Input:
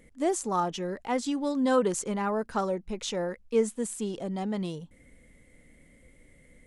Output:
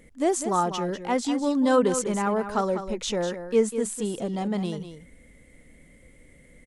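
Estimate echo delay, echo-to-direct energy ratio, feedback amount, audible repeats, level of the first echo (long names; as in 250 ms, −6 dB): 198 ms, −10.0 dB, repeats not evenly spaced, 1, −10.0 dB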